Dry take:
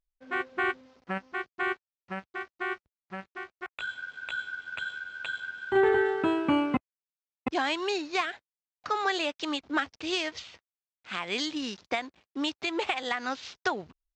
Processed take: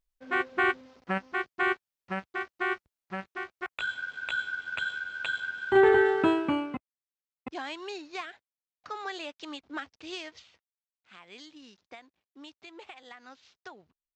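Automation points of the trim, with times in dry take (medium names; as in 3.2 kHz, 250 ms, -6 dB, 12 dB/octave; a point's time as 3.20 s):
6.28 s +3 dB
6.75 s -9 dB
10.16 s -9 dB
11.16 s -17.5 dB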